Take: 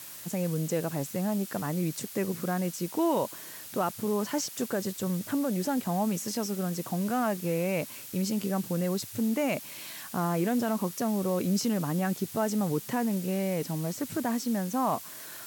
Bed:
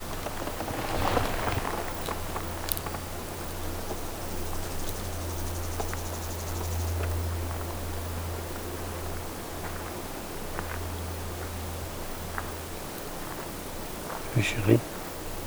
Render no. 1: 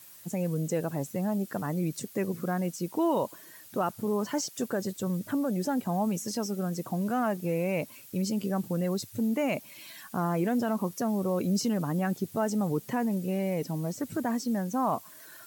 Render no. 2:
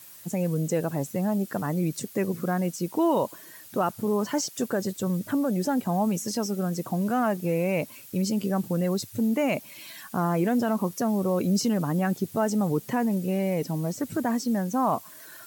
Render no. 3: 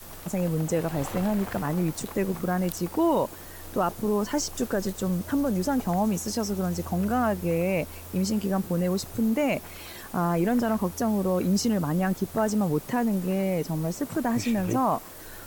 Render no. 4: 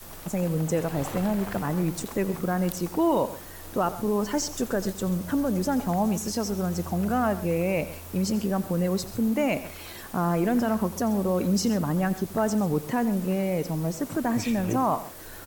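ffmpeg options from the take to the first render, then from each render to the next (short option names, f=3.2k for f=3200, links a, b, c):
-af "afftdn=nr=10:nf=-44"
-af "volume=3.5dB"
-filter_complex "[1:a]volume=-9.5dB[a];[0:a][a]amix=inputs=2:normalize=0"
-af "aecho=1:1:87|132:0.141|0.15"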